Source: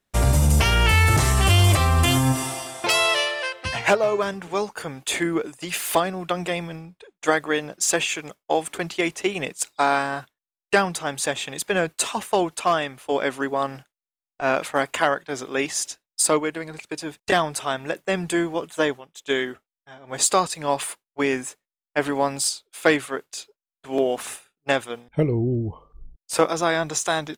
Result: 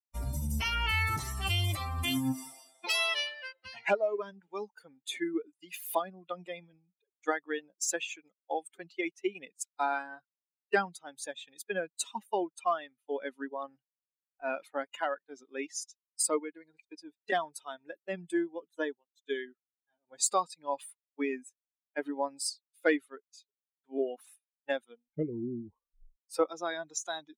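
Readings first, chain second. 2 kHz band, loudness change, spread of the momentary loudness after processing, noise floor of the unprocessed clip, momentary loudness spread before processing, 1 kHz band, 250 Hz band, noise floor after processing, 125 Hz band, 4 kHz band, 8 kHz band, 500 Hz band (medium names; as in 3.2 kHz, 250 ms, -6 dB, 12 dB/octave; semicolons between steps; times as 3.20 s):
-11.5 dB, -11.5 dB, 15 LU, under -85 dBFS, 12 LU, -11.5 dB, -10.5 dB, under -85 dBFS, -16.5 dB, -11.0 dB, -11.5 dB, -11.0 dB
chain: expander on every frequency bin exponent 2; resonant low shelf 200 Hz -6.5 dB, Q 1.5; trim -6 dB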